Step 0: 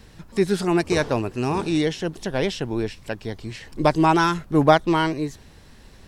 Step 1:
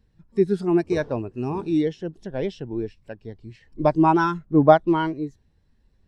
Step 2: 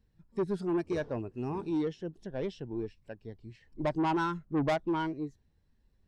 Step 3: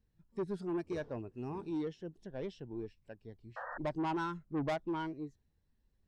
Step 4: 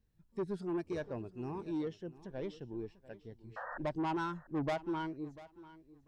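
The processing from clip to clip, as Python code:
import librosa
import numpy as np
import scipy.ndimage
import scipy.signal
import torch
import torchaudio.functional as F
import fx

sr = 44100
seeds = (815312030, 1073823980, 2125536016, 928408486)

y1 = fx.spectral_expand(x, sr, expansion=1.5)
y1 = y1 * 10.0 ** (1.0 / 20.0)
y2 = 10.0 ** (-17.5 / 20.0) * np.tanh(y1 / 10.0 ** (-17.5 / 20.0))
y2 = y2 * 10.0 ** (-7.0 / 20.0)
y3 = fx.spec_paint(y2, sr, seeds[0], shape='noise', start_s=3.56, length_s=0.22, low_hz=470.0, high_hz=1900.0, level_db=-37.0)
y3 = y3 * 10.0 ** (-6.0 / 20.0)
y4 = fx.echo_feedback(y3, sr, ms=694, feedback_pct=20, wet_db=-18.0)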